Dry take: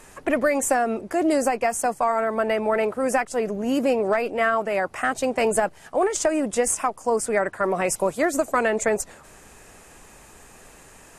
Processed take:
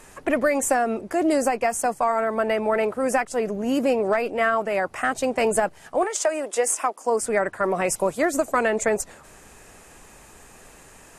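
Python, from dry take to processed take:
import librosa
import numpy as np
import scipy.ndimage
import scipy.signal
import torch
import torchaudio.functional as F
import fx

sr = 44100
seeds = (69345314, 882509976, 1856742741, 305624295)

y = fx.highpass(x, sr, hz=fx.line((6.03, 510.0), (7.2, 220.0)), slope=24, at=(6.03, 7.2), fade=0.02)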